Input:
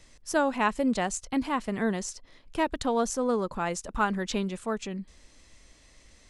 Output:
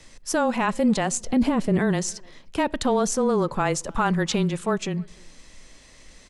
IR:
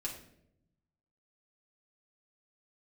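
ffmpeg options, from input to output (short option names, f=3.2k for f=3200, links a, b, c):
-filter_complex "[0:a]asettb=1/sr,asplit=3[a][b][c];[a]atrim=end=1.214[d];[b]atrim=start=1.21:end=1.79,asetpts=PTS-STARTPTS,afade=t=in:d=0.004:c=qsin,afade=t=out:st=0.576:d=0.004:c=qsin,lowshelf=f=730:t=q:w=1.5:g=7.5[e];[c]atrim=start=1.786[f];[d][e]acrossfade=d=0.004:c1=hsin:c2=qsin[g];[g][f]acrossfade=d=0.004:c1=qsin:c2=hsin,alimiter=limit=-20.5dB:level=0:latency=1:release=11,asplit=2[h][i];[i]adelay=300,highpass=300,lowpass=3.4k,asoftclip=type=hard:threshold=-29dB,volume=-25dB[j];[h][j]amix=inputs=2:normalize=0,asplit=2[k][l];[1:a]atrim=start_sample=2205,lowpass=6.1k[m];[l][m]afir=irnorm=-1:irlink=0,volume=-21.5dB[n];[k][n]amix=inputs=2:normalize=0,afreqshift=-18,volume=7dB"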